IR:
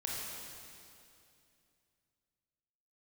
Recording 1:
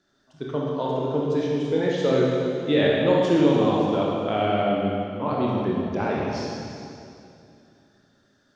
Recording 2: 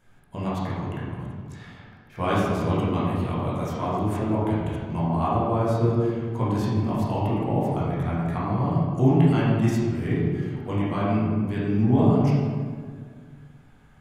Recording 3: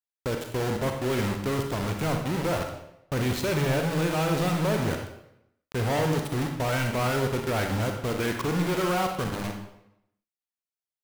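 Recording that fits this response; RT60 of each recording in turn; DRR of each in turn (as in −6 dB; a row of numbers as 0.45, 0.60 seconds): 1; 2.6, 1.9, 0.80 seconds; −4.5, −9.0, 3.5 decibels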